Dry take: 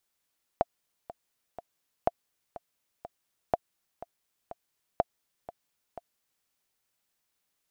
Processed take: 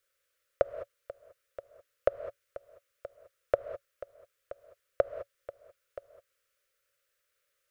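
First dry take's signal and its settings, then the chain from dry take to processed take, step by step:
metronome 123 bpm, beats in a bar 3, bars 4, 691 Hz, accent 17 dB -10 dBFS
EQ curve 110 Hz 0 dB, 210 Hz -22 dB, 560 Hz +14 dB, 790 Hz -21 dB, 1300 Hz +8 dB, 4200 Hz -1 dB; non-linear reverb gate 0.23 s rising, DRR 11 dB

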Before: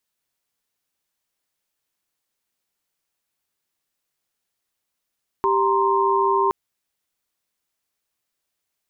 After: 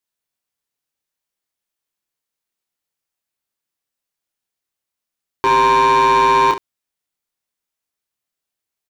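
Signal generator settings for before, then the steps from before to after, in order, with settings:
chord G4/A#5/C6 sine, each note -20.5 dBFS 1.07 s
sample leveller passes 3; on a send: early reflections 27 ms -4 dB, 69 ms -12 dB

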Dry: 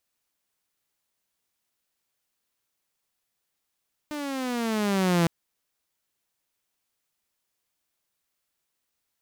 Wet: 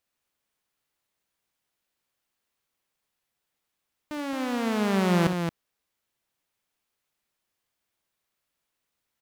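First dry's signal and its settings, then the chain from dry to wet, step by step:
gliding synth tone saw, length 1.16 s, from 303 Hz, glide -10.5 st, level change +12.5 dB, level -16 dB
tone controls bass 0 dB, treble -5 dB; loudspeakers at several distances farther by 21 m -12 dB, 76 m -6 dB

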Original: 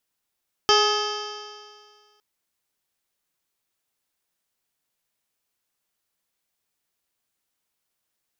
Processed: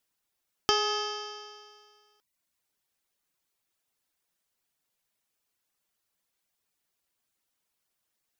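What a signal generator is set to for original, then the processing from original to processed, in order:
stretched partials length 1.51 s, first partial 416 Hz, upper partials -3/0/-8/-17/-11/-1/-17/-20/-3.5/-5/-10.5/-20 dB, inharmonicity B 0.0032, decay 1.89 s, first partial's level -19 dB
reverb removal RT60 0.58 s; compressor, threshold -22 dBFS

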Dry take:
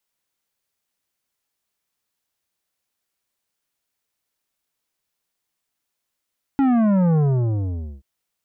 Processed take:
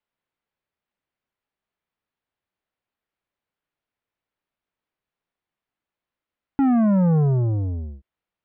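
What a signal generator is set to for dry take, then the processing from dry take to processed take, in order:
sub drop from 280 Hz, over 1.43 s, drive 11 dB, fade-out 0.85 s, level -15.5 dB
air absorption 380 m

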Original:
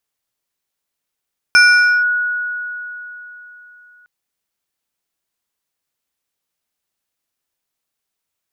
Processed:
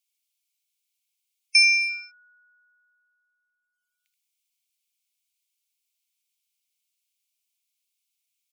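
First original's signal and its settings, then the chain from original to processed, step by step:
FM tone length 2.51 s, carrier 1460 Hz, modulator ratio 2.62, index 0.81, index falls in 0.49 s linear, decay 3.64 s, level -4.5 dB
Chebyshev high-pass 2200 Hz, order 6; spectral gate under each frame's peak -20 dB strong; on a send: echo 79 ms -7.5 dB

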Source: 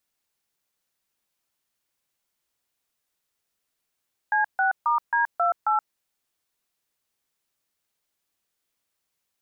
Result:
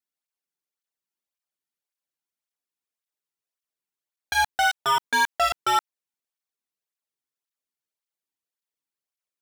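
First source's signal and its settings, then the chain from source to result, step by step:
DTMF "C6*D28", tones 0.125 s, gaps 0.144 s, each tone -21.5 dBFS
sample leveller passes 5; tape flanging out of phase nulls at 1.8 Hz, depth 1.9 ms

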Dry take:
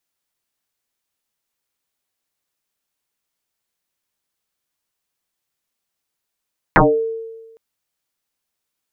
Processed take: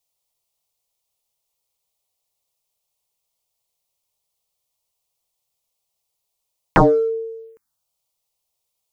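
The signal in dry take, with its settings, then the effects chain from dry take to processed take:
FM tone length 0.81 s, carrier 451 Hz, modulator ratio 0.35, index 11, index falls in 0.32 s exponential, decay 1.25 s, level -5.5 dB
in parallel at -7 dB: overloaded stage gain 22.5 dB; on the sum: envelope phaser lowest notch 270 Hz, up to 2600 Hz, full sweep at -25.5 dBFS

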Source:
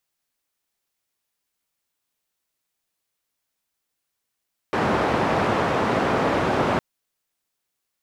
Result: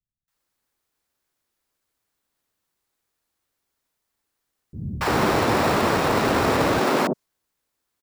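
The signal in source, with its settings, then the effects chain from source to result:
noise band 98–940 Hz, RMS -21.5 dBFS 2.06 s
dynamic EQ 5700 Hz, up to +6 dB, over -51 dBFS, Q 1; in parallel at -6 dB: sample-and-hold 14×; on the sum: three bands offset in time lows, highs, mids 0.28/0.34 s, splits 170/670 Hz

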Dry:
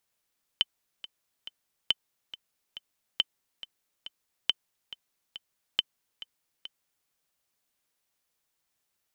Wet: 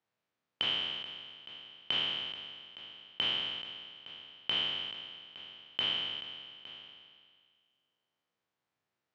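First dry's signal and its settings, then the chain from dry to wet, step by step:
metronome 139 bpm, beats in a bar 3, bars 5, 3060 Hz, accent 17 dB -9.5 dBFS
spectral trails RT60 1.95 s; HPF 90 Hz 24 dB/oct; tape spacing loss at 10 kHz 28 dB

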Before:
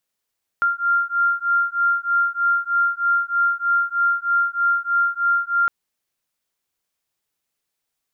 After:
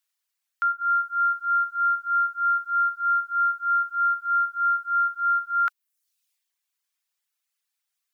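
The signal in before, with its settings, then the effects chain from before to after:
beating tones 1390 Hz, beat 3.2 Hz, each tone -20 dBFS 5.06 s
HPF 1200 Hz 12 dB/oct; reverb removal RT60 0.75 s; transient shaper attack -3 dB, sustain +6 dB

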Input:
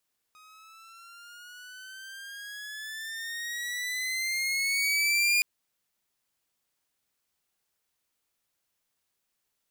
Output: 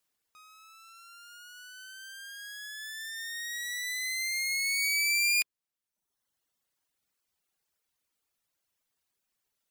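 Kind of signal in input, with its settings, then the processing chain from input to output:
gliding synth tone saw, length 5.07 s, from 1250 Hz, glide +11.5 st, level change +31.5 dB, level -18 dB
reverb removal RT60 1.1 s

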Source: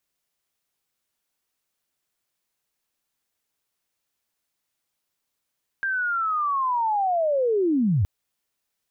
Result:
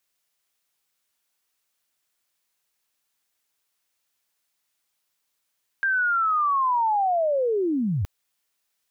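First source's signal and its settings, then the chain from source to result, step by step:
chirp linear 1600 Hz -> 81 Hz -22.5 dBFS -> -17.5 dBFS 2.22 s
tilt shelf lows -4 dB, about 640 Hz

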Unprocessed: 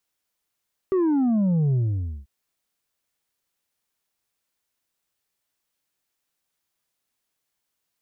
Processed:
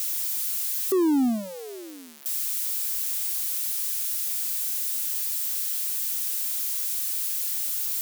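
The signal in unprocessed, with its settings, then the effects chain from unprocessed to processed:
sub drop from 390 Hz, over 1.34 s, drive 4 dB, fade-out 0.52 s, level -18.5 dB
switching spikes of -24.5 dBFS; brick-wall FIR high-pass 220 Hz

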